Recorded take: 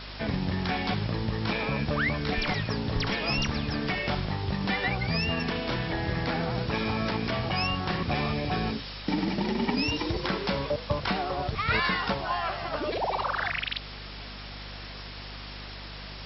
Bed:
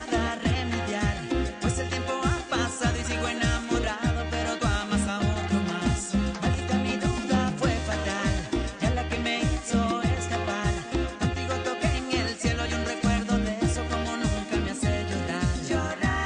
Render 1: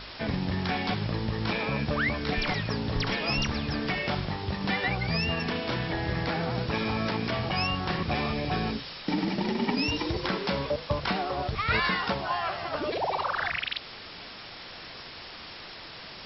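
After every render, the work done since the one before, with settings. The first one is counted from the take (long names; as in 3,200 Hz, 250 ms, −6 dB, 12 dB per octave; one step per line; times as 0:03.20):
hum removal 50 Hz, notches 5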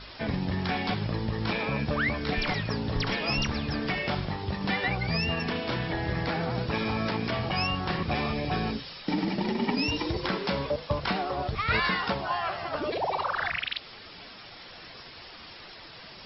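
broadband denoise 7 dB, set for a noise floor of −44 dBFS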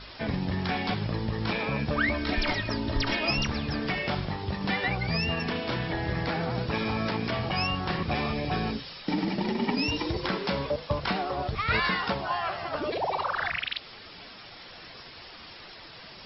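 0:01.97–0:03.31: comb filter 3.2 ms, depth 68%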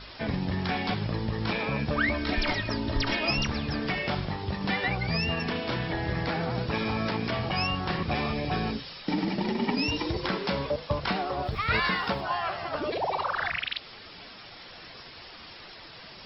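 0:11.45–0:12.21: centre clipping without the shift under −53 dBFS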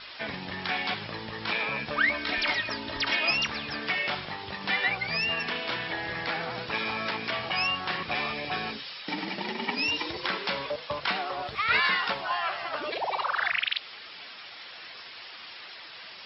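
low-pass filter 3,000 Hz 12 dB per octave
spectral tilt +4.5 dB per octave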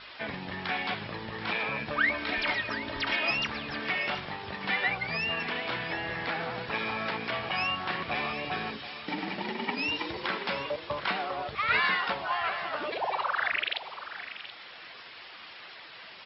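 high-frequency loss of the air 170 metres
single-tap delay 729 ms −12.5 dB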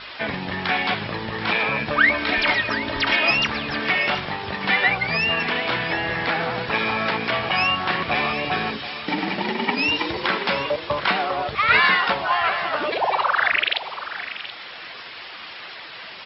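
level +9.5 dB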